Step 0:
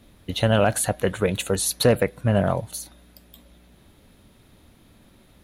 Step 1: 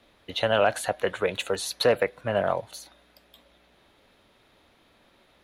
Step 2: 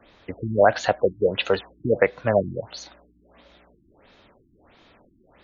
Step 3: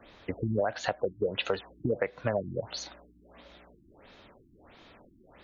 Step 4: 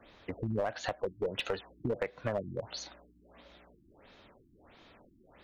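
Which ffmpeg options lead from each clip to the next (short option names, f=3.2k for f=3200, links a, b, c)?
-filter_complex "[0:a]acrossover=split=390 5200:gain=0.178 1 0.224[a][b][c];[a][b][c]amix=inputs=3:normalize=0"
-af "afftfilt=real='re*lt(b*sr/1024,340*pow(7200/340,0.5+0.5*sin(2*PI*1.5*pts/sr)))':imag='im*lt(b*sr/1024,340*pow(7200/340,0.5+0.5*sin(2*PI*1.5*pts/sr)))':win_size=1024:overlap=0.75,volume=6.5dB"
-af "acompressor=threshold=-26dB:ratio=6"
-af "aeval=exprs='clip(val(0),-1,0.0631)':c=same,volume=-3.5dB"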